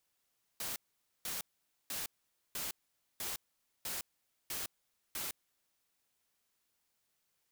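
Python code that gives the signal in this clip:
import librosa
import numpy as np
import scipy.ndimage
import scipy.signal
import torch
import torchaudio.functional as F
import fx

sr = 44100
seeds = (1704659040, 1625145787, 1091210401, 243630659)

y = fx.noise_burst(sr, seeds[0], colour='white', on_s=0.16, off_s=0.49, bursts=8, level_db=-39.5)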